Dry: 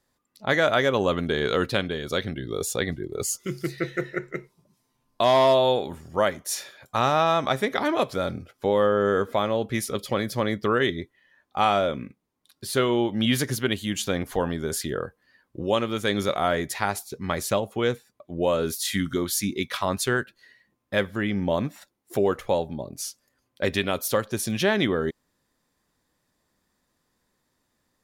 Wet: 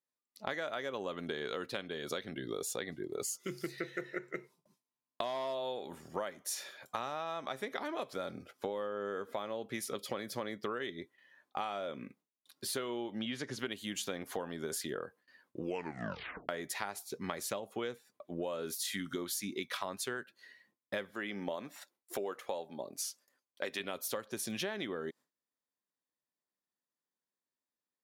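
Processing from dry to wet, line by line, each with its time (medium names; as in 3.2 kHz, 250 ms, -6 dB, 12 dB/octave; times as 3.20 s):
13.19–13.59 s: distance through air 89 m
15.60 s: tape stop 0.89 s
21.11–23.80 s: high-pass 380 Hz 6 dB/octave
whole clip: Bessel high-pass 250 Hz, order 2; gate with hold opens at -55 dBFS; compression 10:1, threshold -32 dBFS; trim -2.5 dB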